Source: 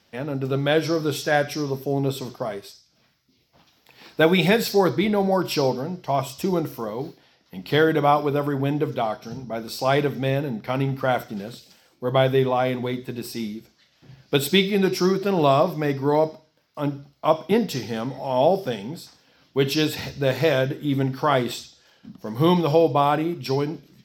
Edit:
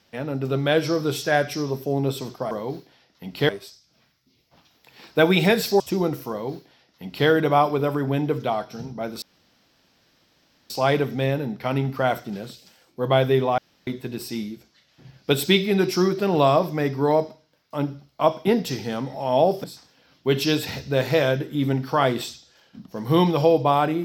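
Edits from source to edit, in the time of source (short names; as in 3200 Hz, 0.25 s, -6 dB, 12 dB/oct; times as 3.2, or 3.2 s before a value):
4.82–6.32 cut
6.82–7.8 copy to 2.51
9.74 insert room tone 1.48 s
12.62–12.91 room tone
18.68–18.94 cut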